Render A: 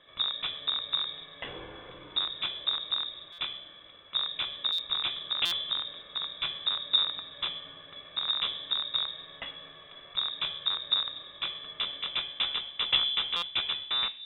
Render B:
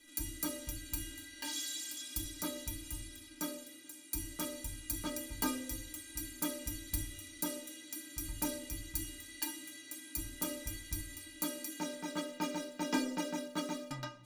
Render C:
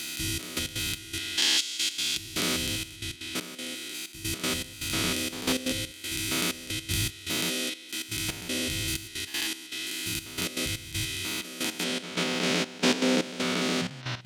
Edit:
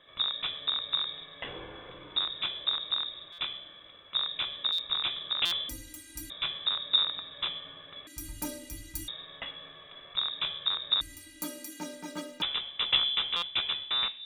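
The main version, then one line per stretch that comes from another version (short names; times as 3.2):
A
5.69–6.3 from B
8.07–9.08 from B
11.01–12.42 from B
not used: C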